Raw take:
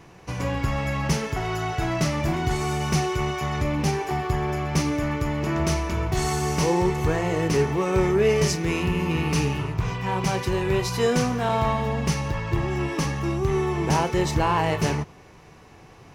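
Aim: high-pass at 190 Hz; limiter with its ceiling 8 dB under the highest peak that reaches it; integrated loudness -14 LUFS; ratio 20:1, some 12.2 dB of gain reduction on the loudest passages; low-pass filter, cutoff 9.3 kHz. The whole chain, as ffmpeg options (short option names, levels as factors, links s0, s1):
-af "highpass=190,lowpass=9300,acompressor=threshold=0.0355:ratio=20,volume=11.9,alimiter=limit=0.562:level=0:latency=1"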